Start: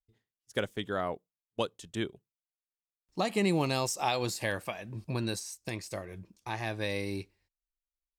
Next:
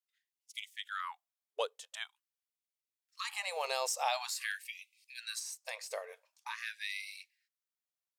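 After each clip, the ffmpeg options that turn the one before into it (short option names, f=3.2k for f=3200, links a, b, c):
-filter_complex "[0:a]asplit=2[a][b];[b]alimiter=limit=-23dB:level=0:latency=1,volume=-0.5dB[c];[a][c]amix=inputs=2:normalize=0,afftfilt=real='re*gte(b*sr/1024,400*pow(2000/400,0.5+0.5*sin(2*PI*0.46*pts/sr)))':imag='im*gte(b*sr/1024,400*pow(2000/400,0.5+0.5*sin(2*PI*0.46*pts/sr)))':win_size=1024:overlap=0.75,volume=-6.5dB"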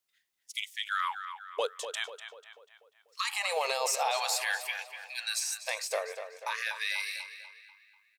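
-filter_complex "[0:a]alimiter=level_in=5.5dB:limit=-24dB:level=0:latency=1:release=12,volume=-5.5dB,asplit=2[a][b];[b]adelay=245,lowpass=f=3.9k:p=1,volume=-9dB,asplit=2[c][d];[d]adelay=245,lowpass=f=3.9k:p=1,volume=0.52,asplit=2[e][f];[f]adelay=245,lowpass=f=3.9k:p=1,volume=0.52,asplit=2[g][h];[h]adelay=245,lowpass=f=3.9k:p=1,volume=0.52,asplit=2[i][j];[j]adelay=245,lowpass=f=3.9k:p=1,volume=0.52,asplit=2[k][l];[l]adelay=245,lowpass=f=3.9k:p=1,volume=0.52[m];[c][e][g][i][k][m]amix=inputs=6:normalize=0[n];[a][n]amix=inputs=2:normalize=0,volume=9dB"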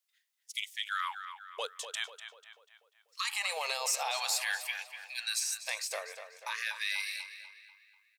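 -af "highpass=f=1.4k:p=1"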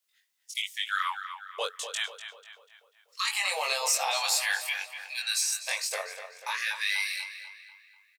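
-filter_complex "[0:a]asplit=2[a][b];[b]adelay=21,volume=-2dB[c];[a][c]amix=inputs=2:normalize=0,volume=3dB"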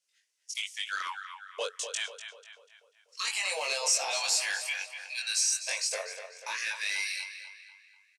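-af "aeval=exprs='0.211*(cos(1*acos(clip(val(0)/0.211,-1,1)))-cos(1*PI/2))+0.0299*(cos(5*acos(clip(val(0)/0.211,-1,1)))-cos(5*PI/2))':c=same,highpass=f=330:w=0.5412,highpass=f=330:w=1.3066,equalizer=f=810:t=q:w=4:g=-7,equalizer=f=1.2k:t=q:w=4:g=-8,equalizer=f=1.9k:t=q:w=4:g=-5,equalizer=f=3.6k:t=q:w=4:g=-6,equalizer=f=5.8k:t=q:w=4:g=4,lowpass=f=9.8k:w=0.5412,lowpass=f=9.8k:w=1.3066,volume=-3dB"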